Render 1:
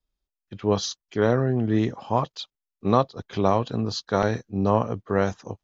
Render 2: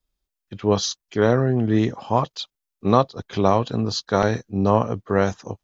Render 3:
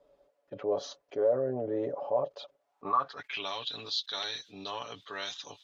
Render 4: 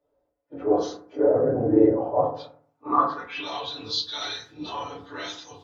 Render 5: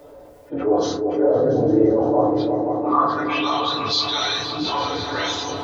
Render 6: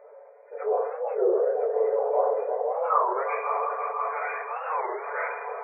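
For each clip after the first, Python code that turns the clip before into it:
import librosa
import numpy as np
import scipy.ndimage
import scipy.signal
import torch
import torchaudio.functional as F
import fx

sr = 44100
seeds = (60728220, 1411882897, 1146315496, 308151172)

y1 = fx.high_shelf(x, sr, hz=6000.0, db=4.0)
y1 = y1 * librosa.db_to_amplitude(3.0)
y2 = y1 + 0.64 * np.pad(y1, (int(7.0 * sr / 1000.0), 0))[:len(y1)]
y2 = fx.filter_sweep_bandpass(y2, sr, from_hz=560.0, to_hz=3600.0, start_s=2.58, end_s=3.52, q=7.2)
y2 = fx.env_flatten(y2, sr, amount_pct=50)
y2 = y2 * librosa.db_to_amplitude(-5.0)
y3 = fx.phase_scramble(y2, sr, seeds[0], window_ms=50)
y3 = fx.rev_fdn(y3, sr, rt60_s=0.59, lf_ratio=1.5, hf_ratio=0.3, size_ms=20.0, drr_db=-6.0)
y3 = fx.band_widen(y3, sr, depth_pct=40)
y4 = fx.echo_opening(y3, sr, ms=171, hz=200, octaves=2, feedback_pct=70, wet_db=-6)
y4 = fx.env_flatten(y4, sr, amount_pct=50)
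y5 = fx.brickwall_bandpass(y4, sr, low_hz=410.0, high_hz=2500.0)
y5 = y5 + 10.0 ** (-7.5 / 20.0) * np.pad(y5, (int(1017 * sr / 1000.0), 0))[:len(y5)]
y5 = fx.record_warp(y5, sr, rpm=33.33, depth_cents=250.0)
y5 = y5 * librosa.db_to_amplitude(-4.5)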